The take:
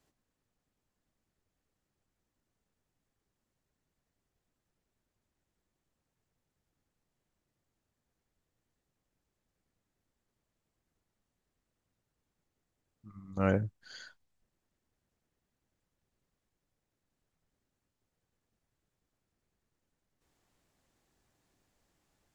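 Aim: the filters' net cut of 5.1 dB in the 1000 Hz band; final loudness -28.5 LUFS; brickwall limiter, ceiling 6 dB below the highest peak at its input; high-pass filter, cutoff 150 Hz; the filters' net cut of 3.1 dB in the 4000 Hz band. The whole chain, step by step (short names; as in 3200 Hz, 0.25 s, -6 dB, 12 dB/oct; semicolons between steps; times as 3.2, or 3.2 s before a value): HPF 150 Hz; bell 1000 Hz -7.5 dB; bell 4000 Hz -3.5 dB; gain +12 dB; limiter -12 dBFS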